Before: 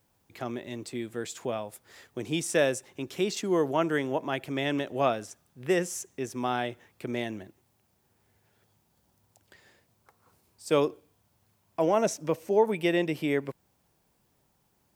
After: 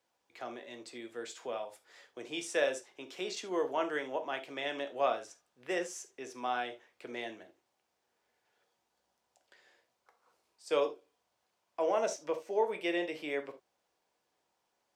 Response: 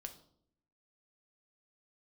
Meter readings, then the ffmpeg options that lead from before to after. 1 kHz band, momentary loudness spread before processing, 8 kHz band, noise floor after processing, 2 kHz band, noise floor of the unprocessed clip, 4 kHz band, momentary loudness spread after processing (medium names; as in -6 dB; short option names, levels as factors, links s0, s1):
-4.5 dB, 15 LU, -8.0 dB, -81 dBFS, -4.5 dB, -71 dBFS, -5.0 dB, 16 LU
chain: -filter_complex "[0:a]acrossover=split=350 7800:gain=0.0891 1 0.2[s0][s1][s2];[s0][s1][s2]amix=inputs=3:normalize=0[s3];[1:a]atrim=start_sample=2205,atrim=end_sample=3969[s4];[s3][s4]afir=irnorm=-1:irlink=0"